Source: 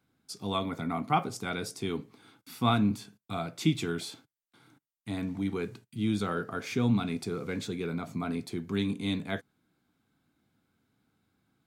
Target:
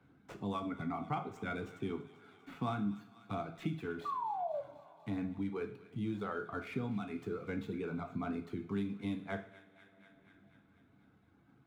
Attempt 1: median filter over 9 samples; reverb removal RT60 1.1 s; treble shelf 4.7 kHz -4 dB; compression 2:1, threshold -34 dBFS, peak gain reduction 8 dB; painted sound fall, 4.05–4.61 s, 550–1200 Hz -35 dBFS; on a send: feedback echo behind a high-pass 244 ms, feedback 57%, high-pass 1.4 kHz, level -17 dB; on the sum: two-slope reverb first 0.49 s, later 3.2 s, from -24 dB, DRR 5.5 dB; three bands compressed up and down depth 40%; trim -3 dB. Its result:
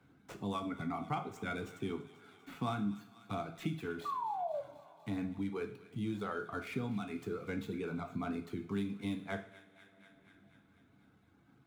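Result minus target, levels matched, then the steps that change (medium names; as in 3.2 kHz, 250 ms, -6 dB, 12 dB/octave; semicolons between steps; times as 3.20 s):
8 kHz band +7.0 dB
change: treble shelf 4.7 kHz -14 dB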